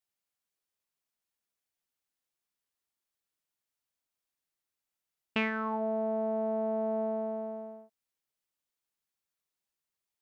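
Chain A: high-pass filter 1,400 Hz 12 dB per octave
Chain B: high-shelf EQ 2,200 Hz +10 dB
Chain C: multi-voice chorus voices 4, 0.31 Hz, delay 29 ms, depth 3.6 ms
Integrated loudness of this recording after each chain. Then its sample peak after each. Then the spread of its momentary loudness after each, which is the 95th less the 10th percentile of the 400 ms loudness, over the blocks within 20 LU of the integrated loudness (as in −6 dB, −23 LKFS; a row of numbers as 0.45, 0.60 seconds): −41.5, −31.5, −35.5 LKFS; −19.0, −11.5, −21.0 dBFS; 16, 10, 10 LU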